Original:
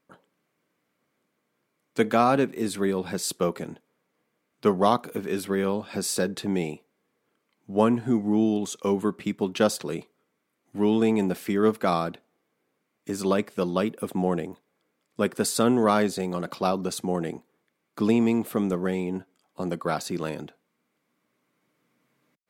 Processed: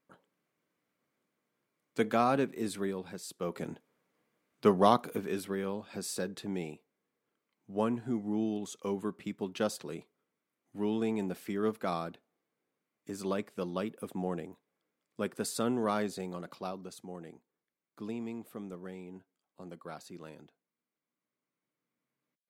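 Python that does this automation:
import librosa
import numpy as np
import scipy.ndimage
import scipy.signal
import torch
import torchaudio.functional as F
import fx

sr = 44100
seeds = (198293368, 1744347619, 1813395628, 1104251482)

y = fx.gain(x, sr, db=fx.line((2.7, -7.0), (3.32, -16.0), (3.65, -3.0), (5.07, -3.0), (5.61, -10.0), (16.24, -10.0), (16.99, -17.5)))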